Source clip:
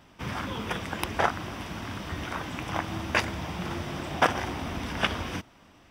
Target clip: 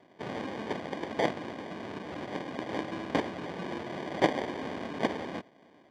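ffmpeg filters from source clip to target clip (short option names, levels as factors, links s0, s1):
-af "acrusher=samples=33:mix=1:aa=0.000001,highpass=240,lowpass=3400"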